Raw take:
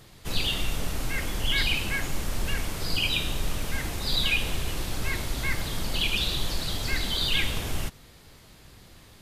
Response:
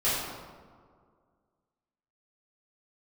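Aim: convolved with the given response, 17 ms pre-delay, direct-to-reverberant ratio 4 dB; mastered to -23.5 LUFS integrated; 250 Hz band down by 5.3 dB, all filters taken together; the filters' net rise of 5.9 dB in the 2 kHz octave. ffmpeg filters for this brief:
-filter_complex "[0:a]equalizer=f=250:t=o:g=-8,equalizer=f=2000:t=o:g=7.5,asplit=2[s0][s1];[1:a]atrim=start_sample=2205,adelay=17[s2];[s1][s2]afir=irnorm=-1:irlink=0,volume=0.158[s3];[s0][s3]amix=inputs=2:normalize=0,volume=1.06"

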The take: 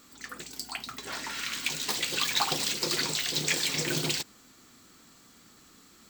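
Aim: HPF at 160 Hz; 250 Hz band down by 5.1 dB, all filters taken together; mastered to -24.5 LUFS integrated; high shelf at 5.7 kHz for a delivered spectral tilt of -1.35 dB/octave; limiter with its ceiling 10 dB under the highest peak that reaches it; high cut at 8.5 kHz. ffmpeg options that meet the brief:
-af "highpass=160,lowpass=8500,equalizer=f=250:t=o:g=-6.5,highshelf=f=5700:g=-8,volume=3.16,alimiter=limit=0.224:level=0:latency=1"

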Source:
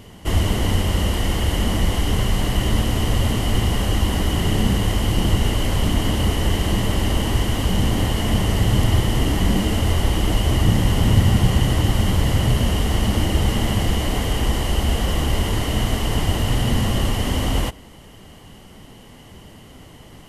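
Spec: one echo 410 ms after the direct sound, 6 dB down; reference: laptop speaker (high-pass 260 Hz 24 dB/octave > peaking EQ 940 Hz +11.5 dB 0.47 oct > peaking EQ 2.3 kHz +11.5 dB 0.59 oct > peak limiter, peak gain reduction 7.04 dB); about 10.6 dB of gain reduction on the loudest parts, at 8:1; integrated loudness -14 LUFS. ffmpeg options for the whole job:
-af "acompressor=threshold=0.0708:ratio=8,highpass=f=260:w=0.5412,highpass=f=260:w=1.3066,equalizer=f=940:t=o:w=0.47:g=11.5,equalizer=f=2300:t=o:w=0.59:g=11.5,aecho=1:1:410:0.501,volume=7.08,alimiter=limit=0.531:level=0:latency=1"

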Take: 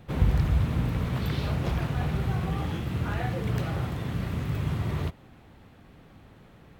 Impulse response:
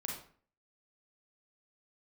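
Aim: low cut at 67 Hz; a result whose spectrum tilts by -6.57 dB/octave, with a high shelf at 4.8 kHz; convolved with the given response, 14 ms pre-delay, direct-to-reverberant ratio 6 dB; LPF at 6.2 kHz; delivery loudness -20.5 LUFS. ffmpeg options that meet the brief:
-filter_complex "[0:a]highpass=67,lowpass=6200,highshelf=f=4800:g=4,asplit=2[s0][s1];[1:a]atrim=start_sample=2205,adelay=14[s2];[s1][s2]afir=irnorm=-1:irlink=0,volume=0.473[s3];[s0][s3]amix=inputs=2:normalize=0,volume=2.66"

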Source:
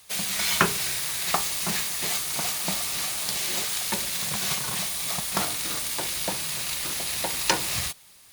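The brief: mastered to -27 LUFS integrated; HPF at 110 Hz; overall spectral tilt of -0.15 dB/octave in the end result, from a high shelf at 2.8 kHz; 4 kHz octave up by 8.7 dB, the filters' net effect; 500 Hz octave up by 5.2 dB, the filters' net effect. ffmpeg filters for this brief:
-af "highpass=110,equalizer=f=500:t=o:g=6.5,highshelf=f=2800:g=5.5,equalizer=f=4000:t=o:g=6,volume=0.398"

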